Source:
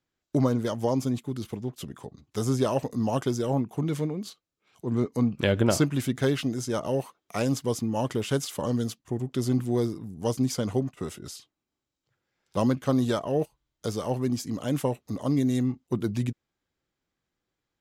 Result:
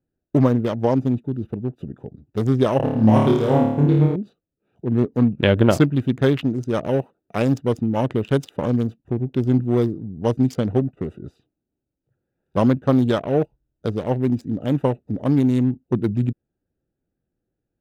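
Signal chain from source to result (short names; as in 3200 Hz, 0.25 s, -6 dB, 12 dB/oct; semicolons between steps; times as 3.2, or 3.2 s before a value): Wiener smoothing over 41 samples; band shelf 7400 Hz -9 dB; 2.77–4.16 flutter echo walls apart 4.7 m, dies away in 0.83 s; gain +7.5 dB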